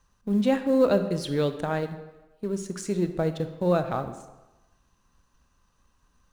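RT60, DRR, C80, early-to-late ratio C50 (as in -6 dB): 1.1 s, 9.0 dB, 12.0 dB, 10.5 dB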